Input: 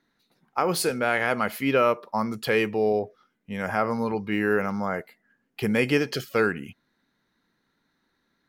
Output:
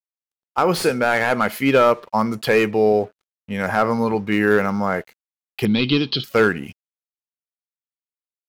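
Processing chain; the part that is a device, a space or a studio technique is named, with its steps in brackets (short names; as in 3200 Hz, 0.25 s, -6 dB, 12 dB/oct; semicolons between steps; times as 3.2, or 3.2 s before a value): early transistor amplifier (crossover distortion -54 dBFS; slew limiter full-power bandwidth 160 Hz); 5.65–6.24 EQ curve 320 Hz 0 dB, 530 Hz -14 dB, 1100 Hz -4 dB, 1800 Hz -15 dB, 3800 Hz +15 dB, 7600 Hz -30 dB; gain +7 dB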